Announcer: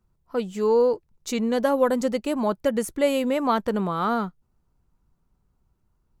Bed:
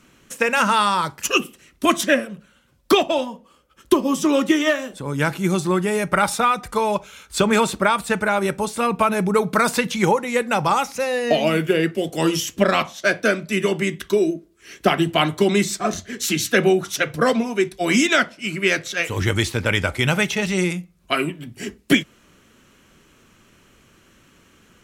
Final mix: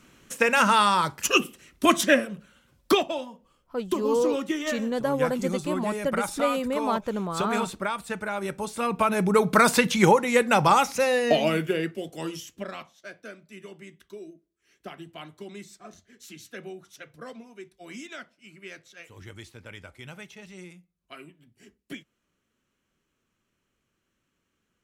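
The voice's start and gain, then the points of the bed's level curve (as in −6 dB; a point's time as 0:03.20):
3.40 s, −4.5 dB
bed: 0:02.80 −2 dB
0:03.19 −11 dB
0:08.30 −11 dB
0:09.59 0 dB
0:11.09 0 dB
0:13.08 −23.5 dB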